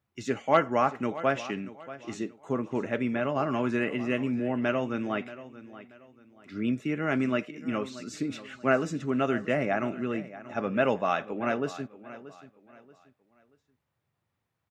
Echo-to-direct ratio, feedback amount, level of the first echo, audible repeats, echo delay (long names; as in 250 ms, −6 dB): −15.5 dB, 32%, −16.0 dB, 2, 632 ms